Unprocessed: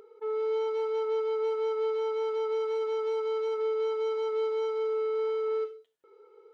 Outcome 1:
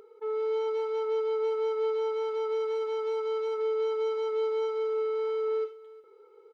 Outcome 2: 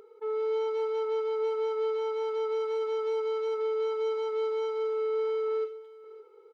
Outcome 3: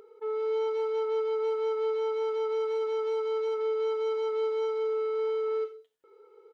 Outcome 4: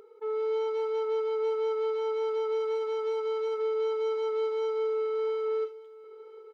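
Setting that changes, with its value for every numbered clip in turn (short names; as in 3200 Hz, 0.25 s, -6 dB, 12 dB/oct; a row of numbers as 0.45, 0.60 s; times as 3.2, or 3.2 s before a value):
echo, time: 357, 562, 86, 1006 ms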